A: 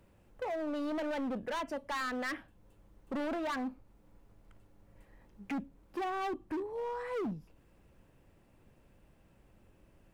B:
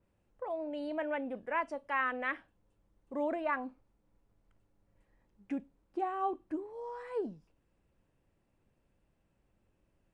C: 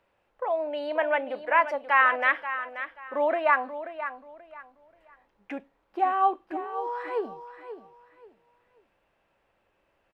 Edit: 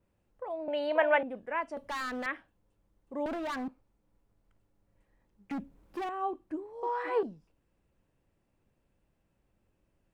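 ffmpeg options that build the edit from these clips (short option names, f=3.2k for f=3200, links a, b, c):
-filter_complex "[2:a]asplit=2[a][b];[0:a]asplit=3[c][d][e];[1:a]asplit=6[f][g][h][i][j][k];[f]atrim=end=0.682[l];[a]atrim=start=0.678:end=1.232[m];[g]atrim=start=1.228:end=1.772[n];[c]atrim=start=1.768:end=2.262[o];[h]atrim=start=2.258:end=3.262[p];[d]atrim=start=3.258:end=3.682[q];[i]atrim=start=3.678:end=5.512[r];[e]atrim=start=5.508:end=6.092[s];[j]atrim=start=6.088:end=6.832[t];[b]atrim=start=6.828:end=7.232[u];[k]atrim=start=7.228[v];[l][m]acrossfade=d=0.004:c1=hsin:c2=hsin[w];[w][n]acrossfade=d=0.004:c1=hsin:c2=hsin[x];[x][o]acrossfade=d=0.004:c1=hsin:c2=hsin[y];[y][p]acrossfade=d=0.004:c1=hsin:c2=hsin[z];[z][q]acrossfade=d=0.004:c1=hsin:c2=hsin[aa];[aa][r]acrossfade=d=0.004:c1=hsin:c2=hsin[ab];[ab][s]acrossfade=d=0.004:c1=hsin:c2=hsin[ac];[ac][t]acrossfade=d=0.004:c1=hsin:c2=hsin[ad];[ad][u]acrossfade=d=0.004:c1=hsin:c2=hsin[ae];[ae][v]acrossfade=d=0.004:c1=hsin:c2=hsin"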